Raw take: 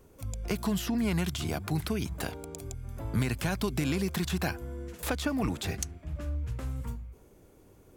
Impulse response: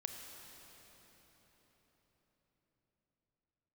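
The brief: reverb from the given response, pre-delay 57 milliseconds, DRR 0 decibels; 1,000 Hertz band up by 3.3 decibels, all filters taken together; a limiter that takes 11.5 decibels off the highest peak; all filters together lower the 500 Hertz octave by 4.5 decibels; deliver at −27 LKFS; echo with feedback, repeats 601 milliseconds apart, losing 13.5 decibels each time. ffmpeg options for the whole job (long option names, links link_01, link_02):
-filter_complex "[0:a]equalizer=frequency=500:width_type=o:gain=-8,equalizer=frequency=1000:width_type=o:gain=7,alimiter=level_in=4dB:limit=-24dB:level=0:latency=1,volume=-4dB,aecho=1:1:601|1202:0.211|0.0444,asplit=2[link_01][link_02];[1:a]atrim=start_sample=2205,adelay=57[link_03];[link_02][link_03]afir=irnorm=-1:irlink=0,volume=1.5dB[link_04];[link_01][link_04]amix=inputs=2:normalize=0,volume=8dB"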